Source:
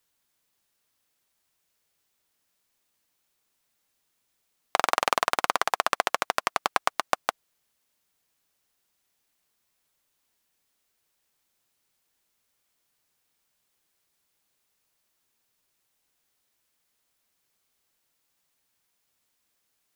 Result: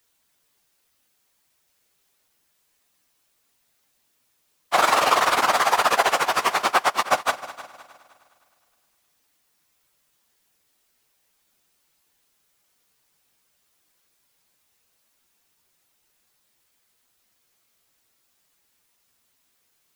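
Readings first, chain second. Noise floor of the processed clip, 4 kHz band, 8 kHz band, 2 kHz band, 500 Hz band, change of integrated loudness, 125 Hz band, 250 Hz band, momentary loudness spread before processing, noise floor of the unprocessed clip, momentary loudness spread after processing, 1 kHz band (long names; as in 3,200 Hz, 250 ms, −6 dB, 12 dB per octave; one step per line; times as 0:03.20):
−69 dBFS, +6.5 dB, +6.5 dB, +6.5 dB, +7.0 dB, +6.5 dB, +7.0 dB, +7.0 dB, 5 LU, −76 dBFS, 6 LU, +7.0 dB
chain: random phases in long frames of 50 ms
on a send: echo machine with several playback heads 103 ms, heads second and third, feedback 42%, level −17.5 dB
on the sum: level +6.5 dB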